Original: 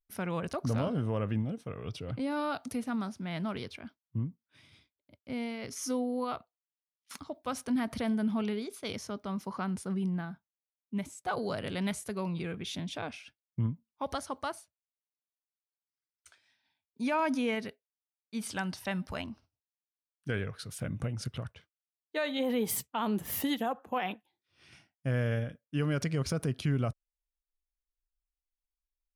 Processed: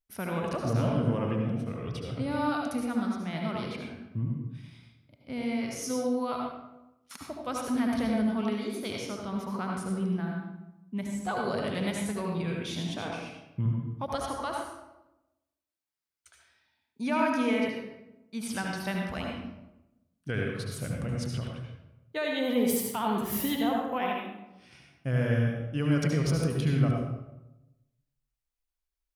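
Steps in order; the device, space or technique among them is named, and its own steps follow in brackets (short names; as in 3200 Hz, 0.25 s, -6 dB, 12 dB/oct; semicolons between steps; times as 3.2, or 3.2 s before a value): bathroom (reverb RT60 0.95 s, pre-delay 67 ms, DRR -0.5 dB)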